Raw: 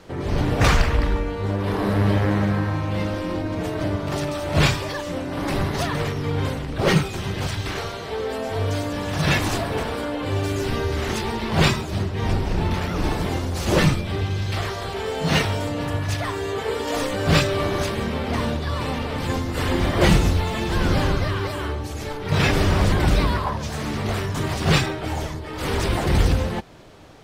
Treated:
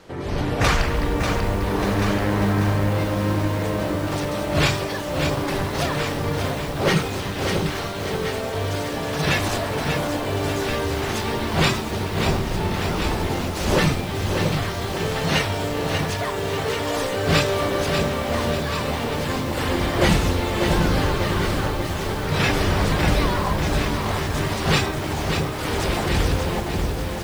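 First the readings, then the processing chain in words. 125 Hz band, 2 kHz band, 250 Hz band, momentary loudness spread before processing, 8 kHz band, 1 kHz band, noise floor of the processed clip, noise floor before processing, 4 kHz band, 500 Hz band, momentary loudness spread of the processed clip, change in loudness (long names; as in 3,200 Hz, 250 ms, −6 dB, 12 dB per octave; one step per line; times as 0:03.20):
−1.0 dB, +1.5 dB, +0.5 dB, 8 LU, +2.5 dB, +1.5 dB, −27 dBFS, −31 dBFS, +1.5 dB, +1.5 dB, 5 LU, +0.5 dB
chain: low-shelf EQ 240 Hz −4 dB
on a send: delay that swaps between a low-pass and a high-pass 688 ms, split 980 Hz, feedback 59%, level −5 dB
on the sum: feedback echo at a low word length 591 ms, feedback 55%, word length 6 bits, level −5.5 dB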